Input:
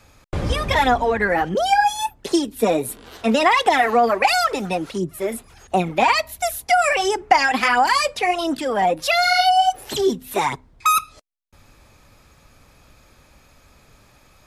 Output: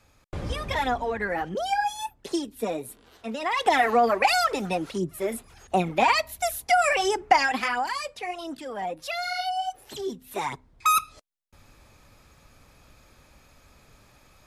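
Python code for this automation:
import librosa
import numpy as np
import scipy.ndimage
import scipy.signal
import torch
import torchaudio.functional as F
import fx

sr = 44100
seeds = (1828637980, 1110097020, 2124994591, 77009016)

y = fx.gain(x, sr, db=fx.line((2.42, -9.0), (3.38, -15.5), (3.7, -4.0), (7.35, -4.0), (7.95, -13.0), (10.05, -13.0), (10.95, -3.5)))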